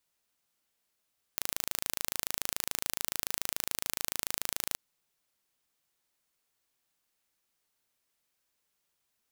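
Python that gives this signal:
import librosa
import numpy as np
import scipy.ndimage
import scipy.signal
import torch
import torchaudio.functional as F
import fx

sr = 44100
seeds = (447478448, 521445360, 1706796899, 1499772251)

y = 10.0 ** (-4.0 / 20.0) * (np.mod(np.arange(round(3.39 * sr)), round(sr / 27.0)) == 0)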